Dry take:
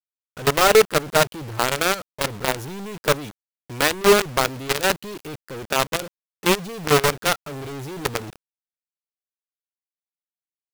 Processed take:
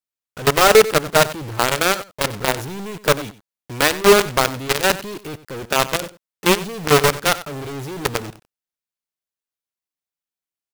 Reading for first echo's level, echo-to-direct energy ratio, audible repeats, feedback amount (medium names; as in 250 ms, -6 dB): -16.0 dB, -16.0 dB, 1, no regular repeats